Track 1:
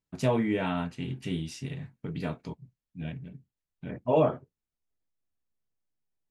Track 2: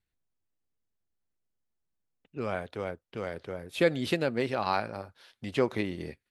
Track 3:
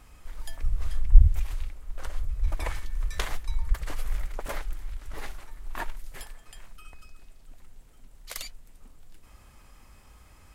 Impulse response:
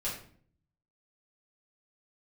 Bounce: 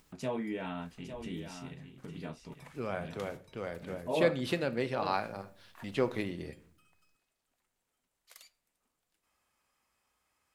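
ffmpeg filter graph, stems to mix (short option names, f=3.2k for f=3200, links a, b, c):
-filter_complex "[0:a]equalizer=f=110:w=3.6:g=-14.5,acompressor=mode=upward:threshold=-35dB:ratio=2.5,volume=-8.5dB,asplit=3[a][b][c];[b]volume=-9dB[d];[1:a]adelay=400,volume=-5dB,asplit=2[e][f];[f]volume=-13.5dB[g];[2:a]highpass=f=580:p=1,volume=-18dB,asplit=2[h][i];[i]volume=-17.5dB[j];[c]apad=whole_len=464906[k];[h][k]sidechaincompress=threshold=-41dB:ratio=8:attack=16:release=126[l];[3:a]atrim=start_sample=2205[m];[g][j]amix=inputs=2:normalize=0[n];[n][m]afir=irnorm=-1:irlink=0[o];[d]aecho=0:1:854:1[p];[a][e][l][o][p]amix=inputs=5:normalize=0"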